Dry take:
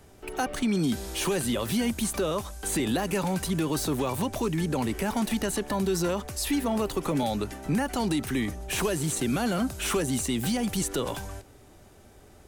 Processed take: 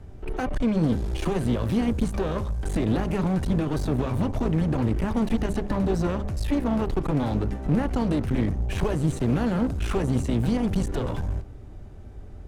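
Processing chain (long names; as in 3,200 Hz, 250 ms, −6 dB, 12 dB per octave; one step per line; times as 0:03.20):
RIAA equalisation playback
hum removal 67.8 Hz, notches 18
asymmetric clip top −29.5 dBFS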